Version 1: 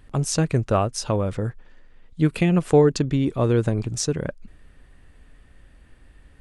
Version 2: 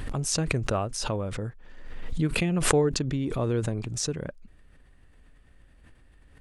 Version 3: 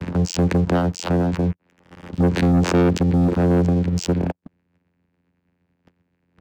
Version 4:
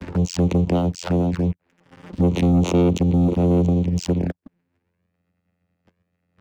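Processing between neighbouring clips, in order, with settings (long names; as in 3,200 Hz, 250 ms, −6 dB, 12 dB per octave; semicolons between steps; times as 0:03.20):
background raised ahead of every attack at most 39 dB per second; level −7.5 dB
hard clipping −16.5 dBFS, distortion −19 dB; channel vocoder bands 8, saw 87.7 Hz; leveller curve on the samples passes 3; level +3.5 dB
flanger swept by the level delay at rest 10 ms, full sweep at −16.5 dBFS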